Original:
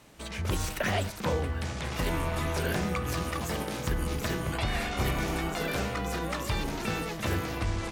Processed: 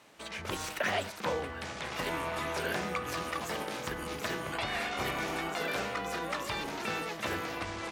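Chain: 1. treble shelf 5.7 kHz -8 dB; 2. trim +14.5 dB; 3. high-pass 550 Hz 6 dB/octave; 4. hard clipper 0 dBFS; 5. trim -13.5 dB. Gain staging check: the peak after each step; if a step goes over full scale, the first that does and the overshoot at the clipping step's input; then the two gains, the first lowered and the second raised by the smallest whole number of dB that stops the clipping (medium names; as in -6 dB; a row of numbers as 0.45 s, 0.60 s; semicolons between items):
-19.0 dBFS, -4.5 dBFS, -5.5 dBFS, -5.5 dBFS, -19.0 dBFS; nothing clips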